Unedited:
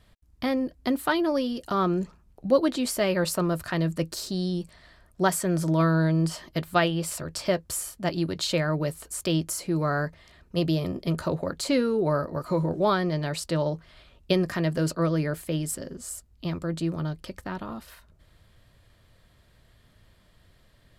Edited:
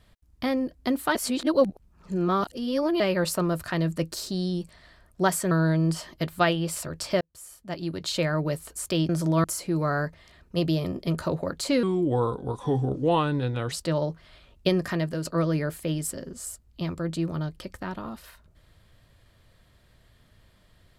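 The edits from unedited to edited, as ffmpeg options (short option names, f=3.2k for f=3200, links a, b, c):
-filter_complex "[0:a]asplit=10[a][b][c][d][e][f][g][h][i][j];[a]atrim=end=1.152[k];[b]atrim=start=1.148:end=3.002,asetpts=PTS-STARTPTS,areverse[l];[c]atrim=start=2.998:end=5.512[m];[d]atrim=start=5.858:end=7.56,asetpts=PTS-STARTPTS,afade=t=out:st=1.698:d=0.004:c=hsin[n];[e]atrim=start=7.56:end=9.442,asetpts=PTS-STARTPTS,afade=t=in:d=1.07[o];[f]atrim=start=5.508:end=5.862[p];[g]atrim=start=9.438:end=11.834[q];[h]atrim=start=11.83:end=13.36,asetpts=PTS-STARTPTS,asetrate=35721,aresample=44100[r];[i]atrim=start=13.356:end=14.89,asetpts=PTS-STARTPTS,afade=t=out:st=1.214:d=0.32:silence=0.421697[s];[j]atrim=start=14.89,asetpts=PTS-STARTPTS,afade=t=in:d=0.004:c=hsin:silence=0.421697[t];[k][l]acrossfade=d=0.004:c1=hsin:c2=hsin[u];[u][m]acrossfade=d=0.004:c1=hsin:c2=hsin[v];[n][o]concat=n=2:v=0:a=1[w];[v][w]acrossfade=d=0.004:c1=hsin:c2=hsin[x];[x][p]acrossfade=d=0.004:c1=hsin:c2=hsin[y];[y][q]acrossfade=d=0.004:c1=hsin:c2=hsin[z];[z][r]acrossfade=d=0.004:c1=hsin:c2=hsin[aa];[s][t]concat=n=2:v=0:a=1[ab];[aa][ab]acrossfade=d=0.004:c1=hsin:c2=hsin"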